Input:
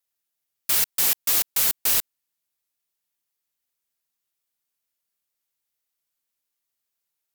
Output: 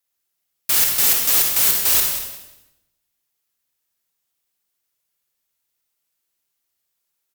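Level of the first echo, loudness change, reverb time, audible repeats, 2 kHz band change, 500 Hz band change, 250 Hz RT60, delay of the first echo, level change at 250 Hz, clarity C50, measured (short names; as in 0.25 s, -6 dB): -10.5 dB, +5.0 dB, 0.95 s, 2, +5.5 dB, +6.0 dB, 1.2 s, 0.187 s, +5.5 dB, 2.5 dB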